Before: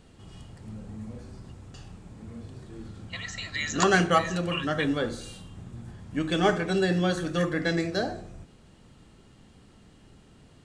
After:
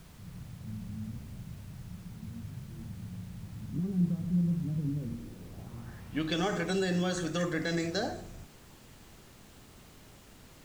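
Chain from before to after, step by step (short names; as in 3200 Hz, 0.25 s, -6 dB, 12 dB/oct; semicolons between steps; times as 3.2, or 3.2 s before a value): limiter -19 dBFS, peak gain reduction 9.5 dB; low-pass sweep 170 Hz -> 7200 Hz, 5.09–6.44; added noise pink -54 dBFS; gain -3 dB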